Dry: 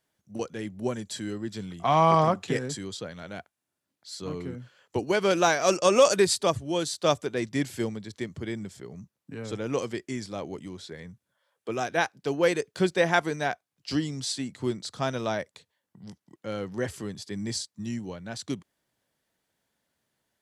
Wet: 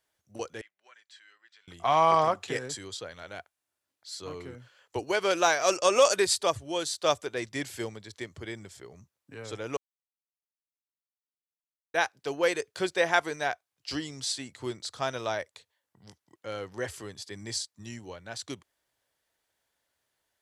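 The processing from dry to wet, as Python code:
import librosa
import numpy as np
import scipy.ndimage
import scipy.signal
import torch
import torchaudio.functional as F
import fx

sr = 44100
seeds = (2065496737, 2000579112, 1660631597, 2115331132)

y = fx.ladder_bandpass(x, sr, hz=2200.0, resonance_pct=25, at=(0.61, 1.68))
y = fx.edit(y, sr, fx.silence(start_s=9.77, length_s=2.17), tone=tone)
y = fx.peak_eq(y, sr, hz=190.0, db=-14.0, octaves=1.4)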